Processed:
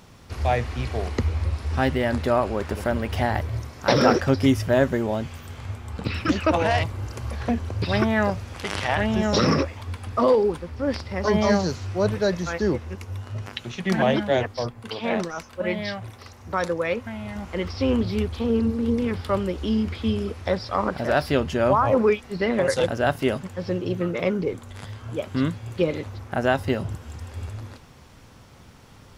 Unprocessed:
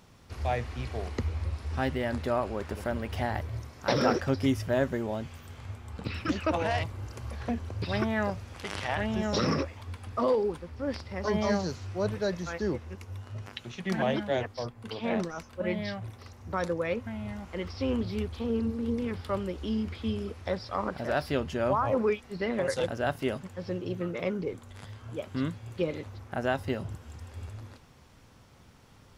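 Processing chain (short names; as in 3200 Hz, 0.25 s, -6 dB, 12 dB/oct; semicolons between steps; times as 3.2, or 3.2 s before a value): 14.8–17.36 low shelf 390 Hz -6 dB; gain +7.5 dB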